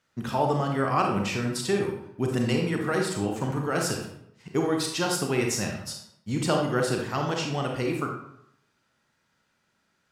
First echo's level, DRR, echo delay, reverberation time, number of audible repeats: no echo audible, 1.0 dB, no echo audible, 0.75 s, no echo audible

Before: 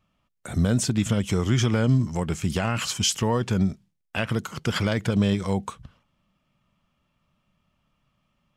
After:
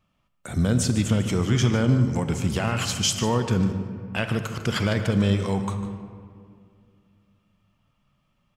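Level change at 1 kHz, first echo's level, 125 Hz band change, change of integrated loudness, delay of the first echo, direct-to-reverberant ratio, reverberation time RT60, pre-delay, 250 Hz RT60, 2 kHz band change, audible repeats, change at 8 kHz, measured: +1.0 dB, −13.5 dB, +1.5 dB, +0.5 dB, 149 ms, 7.0 dB, 2.2 s, 37 ms, 2.9 s, +0.5 dB, 1, +0.5 dB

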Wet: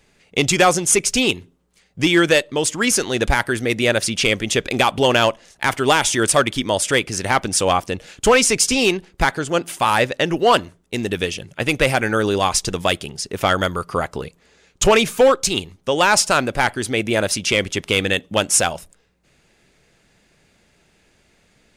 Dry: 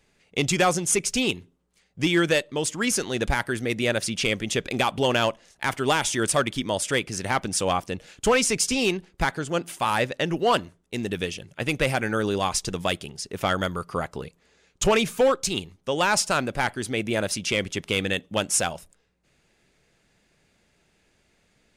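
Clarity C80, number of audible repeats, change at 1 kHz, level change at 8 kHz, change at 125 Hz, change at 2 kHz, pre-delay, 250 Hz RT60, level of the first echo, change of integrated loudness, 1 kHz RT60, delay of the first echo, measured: no reverb audible, no echo audible, +7.0 dB, +7.0 dB, +4.5 dB, +7.0 dB, no reverb audible, no reverb audible, no echo audible, +6.5 dB, no reverb audible, no echo audible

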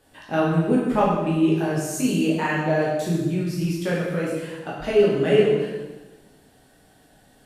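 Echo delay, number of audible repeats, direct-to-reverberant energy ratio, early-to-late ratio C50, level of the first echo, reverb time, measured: no echo audible, no echo audible, −6.0 dB, 0.5 dB, no echo audible, 1.1 s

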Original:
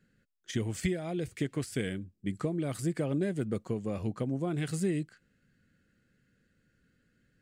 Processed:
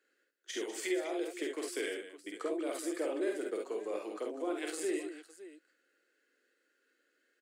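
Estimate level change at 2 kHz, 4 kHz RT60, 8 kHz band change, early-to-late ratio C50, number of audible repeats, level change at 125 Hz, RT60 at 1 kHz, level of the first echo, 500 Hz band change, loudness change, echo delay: +0.5 dB, no reverb audible, +0.5 dB, no reverb audible, 3, below −40 dB, no reverb audible, −3.5 dB, +0.5 dB, −3.5 dB, 49 ms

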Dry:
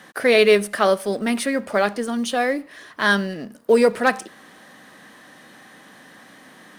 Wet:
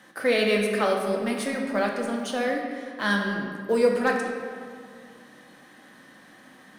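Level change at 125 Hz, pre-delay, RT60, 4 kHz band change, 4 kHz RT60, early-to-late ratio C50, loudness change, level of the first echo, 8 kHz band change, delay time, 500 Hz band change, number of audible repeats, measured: −2.5 dB, 3 ms, 2.1 s, −5.5 dB, 1.2 s, 3.0 dB, −6.0 dB, no echo audible, −7.0 dB, no echo audible, −5.5 dB, no echo audible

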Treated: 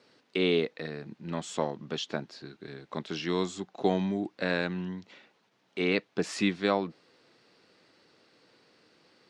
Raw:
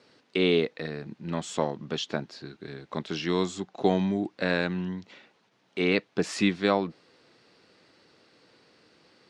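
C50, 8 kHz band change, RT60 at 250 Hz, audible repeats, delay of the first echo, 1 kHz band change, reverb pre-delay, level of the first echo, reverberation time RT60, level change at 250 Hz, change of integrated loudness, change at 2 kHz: no reverb audible, −2.5 dB, no reverb audible, no echo audible, no echo audible, −2.5 dB, no reverb audible, no echo audible, no reverb audible, −3.0 dB, −3.0 dB, −2.5 dB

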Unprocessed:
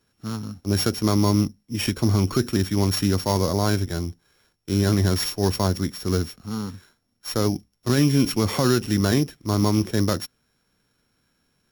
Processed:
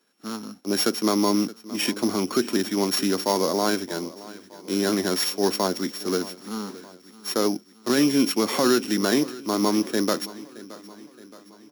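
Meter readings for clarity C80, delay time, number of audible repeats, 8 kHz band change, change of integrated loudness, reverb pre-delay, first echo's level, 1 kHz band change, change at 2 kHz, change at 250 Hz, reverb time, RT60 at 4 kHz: no reverb audible, 621 ms, 4, +1.5 dB, −1.0 dB, no reverb audible, −18.5 dB, +1.5 dB, +1.5 dB, −1.0 dB, no reverb audible, no reverb audible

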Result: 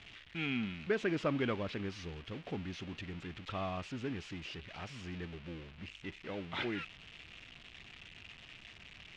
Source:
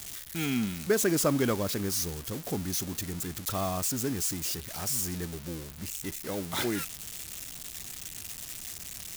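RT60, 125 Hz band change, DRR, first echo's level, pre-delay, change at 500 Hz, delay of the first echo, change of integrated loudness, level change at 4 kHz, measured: no reverb audible, −7.5 dB, no reverb audible, no echo audible, no reverb audible, −7.5 dB, no echo audible, −8.5 dB, −8.5 dB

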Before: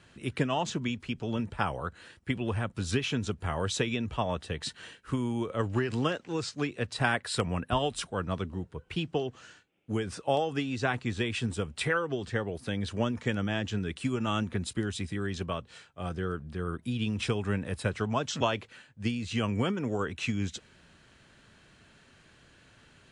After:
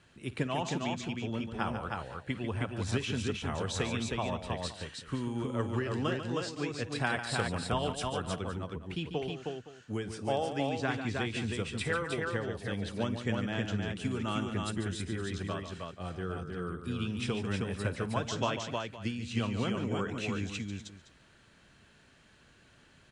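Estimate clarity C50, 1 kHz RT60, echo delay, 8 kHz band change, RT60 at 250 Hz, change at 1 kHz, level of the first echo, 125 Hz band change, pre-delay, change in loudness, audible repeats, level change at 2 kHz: no reverb audible, no reverb audible, 53 ms, −2.5 dB, no reverb audible, −2.5 dB, −17.5 dB, −2.5 dB, no reverb audible, −2.5 dB, 4, −2.5 dB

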